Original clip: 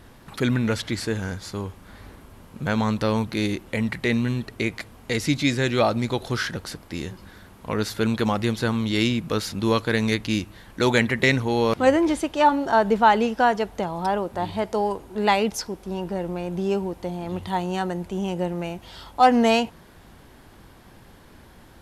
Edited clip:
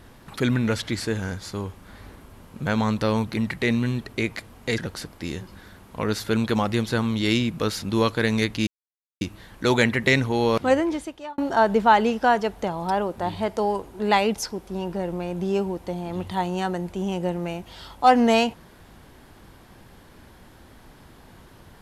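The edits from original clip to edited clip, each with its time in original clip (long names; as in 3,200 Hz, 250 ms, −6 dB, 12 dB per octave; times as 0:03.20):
0:03.37–0:03.79: remove
0:05.20–0:06.48: remove
0:10.37: splice in silence 0.54 s
0:11.73–0:12.54: fade out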